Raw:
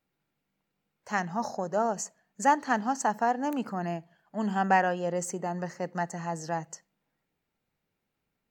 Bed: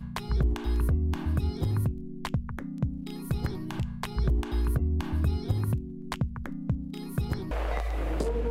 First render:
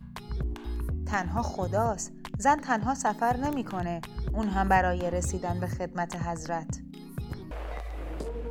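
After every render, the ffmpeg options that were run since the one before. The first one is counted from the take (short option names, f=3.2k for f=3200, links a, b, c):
-filter_complex "[1:a]volume=-6.5dB[a];[0:a][a]amix=inputs=2:normalize=0"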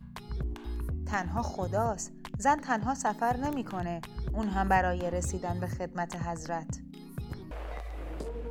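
-af "volume=-2.5dB"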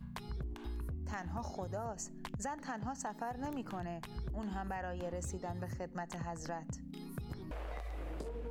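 -af "alimiter=limit=-21dB:level=0:latency=1:release=129,acompressor=threshold=-40dB:ratio=3"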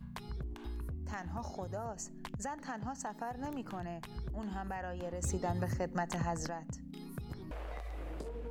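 -filter_complex "[0:a]asplit=3[a][b][c];[a]atrim=end=5.232[d];[b]atrim=start=5.228:end=6.472,asetpts=PTS-STARTPTS,volume=6.5dB[e];[c]atrim=start=6.468[f];[d][e]acrossfade=d=0.004:c1=hsin:c2=hsin[g];[g][f]acrossfade=d=0.004:c1=hsin:c2=hsin"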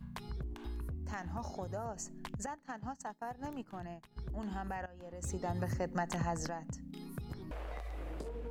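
-filter_complex "[0:a]asettb=1/sr,asplit=3[a][b][c];[a]atrim=end=2.464[d];[b]atrim=start=2.46:end=4.29,asetpts=PTS-STARTPTS,afade=t=in:d=0.004:c=qsin,afade=t=out:st=1.826:d=0.004:c=qsin,agate=range=-33dB:threshold=-38dB:ratio=3:release=100:detection=peak[e];[c]atrim=start=4.286[f];[d][e]acrossfade=d=0.004:c1=hsin:c2=qsin[g];[g][f]acrossfade=d=0.004:c1=qsin:c2=hsin,asplit=2[h][i];[h]atrim=end=4.86,asetpts=PTS-STARTPTS,afade=t=out:st=4.856:d=0.004:c=hsin:silence=0.158489[j];[i]atrim=start=4.86,asetpts=PTS-STARTPTS,afade=t=in:d=1.16:c=qsin:silence=0.158489[k];[j][k]concat=n=2:v=0:a=1"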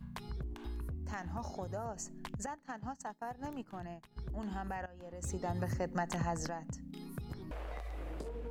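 -af anull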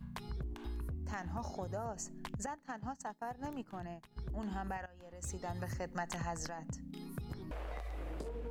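-filter_complex "[0:a]asettb=1/sr,asplit=3[a][b][c];[a]atrim=end=4.774[d];[b]atrim=start=4.77:end=6.58,asetpts=PTS-STARTPTS,afade=t=in:d=0.004:c=qsin,afade=t=out:st=1.806:d=0.004:c=qsin,equalizer=f=260:w=0.33:g=-6.5[e];[c]atrim=start=6.576[f];[d][e]acrossfade=d=0.004:c1=hsin:c2=qsin[g];[g][f]acrossfade=d=0.004:c1=qsin:c2=hsin"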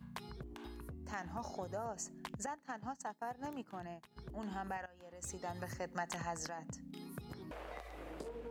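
-af "highpass=f=210:p=1"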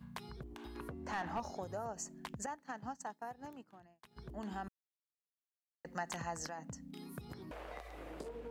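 -filter_complex "[0:a]asettb=1/sr,asplit=3[a][b][c];[a]atrim=end=0.754[d];[b]atrim=start=0.75:end=1.4,asetpts=PTS-STARTPTS,afade=t=in:d=0.004:c=qsin,afade=t=out:st=0.646:d=0.004:c=qsin,asplit=2[e][f];[f]highpass=f=720:p=1,volume=20dB,asoftclip=type=tanh:threshold=-28.5dB[g];[e][g]amix=inputs=2:normalize=0,lowpass=f=1.7k:p=1,volume=-6dB[h];[c]atrim=start=1.396[i];[d][h]acrossfade=d=0.004:c1=hsin:c2=qsin[j];[j][i]acrossfade=d=0.004:c1=qsin:c2=hsin,asettb=1/sr,asplit=3[k][l][m];[k]atrim=end=4.684[n];[l]atrim=start=4.68:end=5.85,asetpts=PTS-STARTPTS,afade=t=in:d=0.004:c=qsin,afade=t=out:st=1.166:d=0.004:c=qsin,acrusher=bits=2:mix=0:aa=0.5[o];[m]atrim=start=5.846[p];[n][o]acrossfade=d=0.004:c1=hsin:c2=qsin[q];[q][p]acrossfade=d=0.004:c1=qsin:c2=hsin,asplit=2[r][s];[r]atrim=end=4.03,asetpts=PTS-STARTPTS,afade=t=out:st=3:d=1.03[t];[s]atrim=start=4.03,asetpts=PTS-STARTPTS,afade=t=in:d=0.004:c=hsin[u];[t][u]concat=n=2:v=0:a=1"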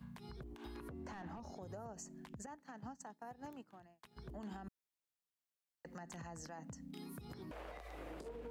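-filter_complex "[0:a]acrossover=split=400[a][b];[b]acompressor=threshold=-47dB:ratio=6[c];[a][c]amix=inputs=2:normalize=0,alimiter=level_in=15.5dB:limit=-24dB:level=0:latency=1:release=77,volume=-15.5dB"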